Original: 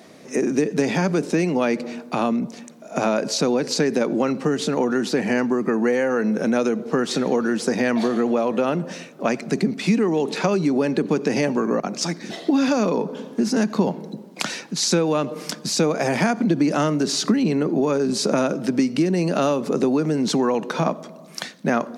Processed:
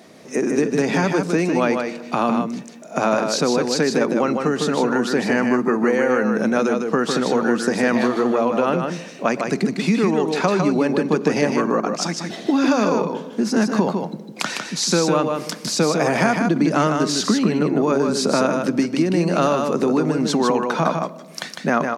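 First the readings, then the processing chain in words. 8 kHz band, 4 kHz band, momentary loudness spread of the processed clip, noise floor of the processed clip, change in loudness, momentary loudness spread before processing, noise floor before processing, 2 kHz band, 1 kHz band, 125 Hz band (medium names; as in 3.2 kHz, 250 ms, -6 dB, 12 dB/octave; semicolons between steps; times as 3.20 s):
+1.5 dB, +1.5 dB, 6 LU, -38 dBFS, +2.0 dB, 7 LU, -42 dBFS, +4.0 dB, +4.5 dB, +1.5 dB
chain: dynamic bell 1.2 kHz, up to +5 dB, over -37 dBFS, Q 1.2; on a send: delay 154 ms -5 dB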